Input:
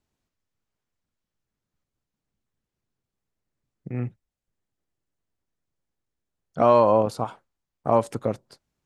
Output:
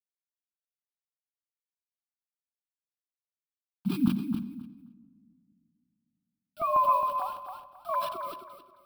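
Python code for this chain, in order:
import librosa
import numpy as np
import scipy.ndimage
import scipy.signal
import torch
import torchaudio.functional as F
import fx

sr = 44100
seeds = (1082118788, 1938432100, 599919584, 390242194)

y = fx.sine_speech(x, sr)
y = fx.low_shelf_res(y, sr, hz=320.0, db=9.5, q=3.0)
y = fx.quant_dither(y, sr, seeds[0], bits=8, dither='none')
y = fx.filter_lfo_notch(y, sr, shape='saw_up', hz=fx.line((3.93, 1.8), (6.85, 7.4)), low_hz=390.0, high_hz=1700.0, q=1.1, at=(3.93, 6.85), fade=0.02)
y = fx.fixed_phaser(y, sr, hz=1900.0, stages=6)
y = fx.echo_feedback(y, sr, ms=268, feedback_pct=25, wet_db=-7)
y = fx.room_shoebox(y, sr, seeds[1], volume_m3=2900.0, walls='mixed', distance_m=0.44)
y = fx.sustainer(y, sr, db_per_s=74.0)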